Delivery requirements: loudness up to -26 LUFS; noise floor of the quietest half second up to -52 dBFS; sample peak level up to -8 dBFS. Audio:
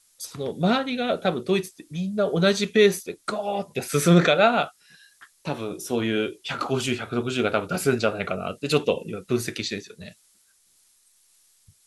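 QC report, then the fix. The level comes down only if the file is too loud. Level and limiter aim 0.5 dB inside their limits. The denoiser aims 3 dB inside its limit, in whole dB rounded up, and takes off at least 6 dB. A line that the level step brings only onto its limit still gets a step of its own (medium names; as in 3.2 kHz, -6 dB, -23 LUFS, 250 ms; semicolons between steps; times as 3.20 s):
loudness -24.0 LUFS: fail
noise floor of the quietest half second -62 dBFS: pass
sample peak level -4.5 dBFS: fail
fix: trim -2.5 dB; peak limiter -8.5 dBFS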